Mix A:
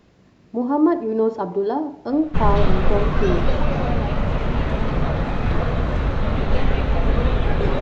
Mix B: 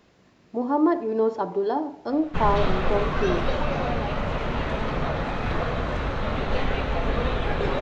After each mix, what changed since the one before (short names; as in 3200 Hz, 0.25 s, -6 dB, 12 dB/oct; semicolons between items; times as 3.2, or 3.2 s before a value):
master: add low shelf 310 Hz -8.5 dB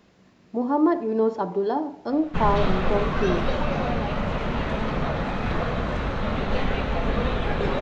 master: add bell 200 Hz +5.5 dB 0.44 oct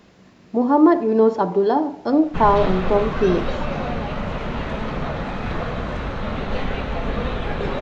speech +6.5 dB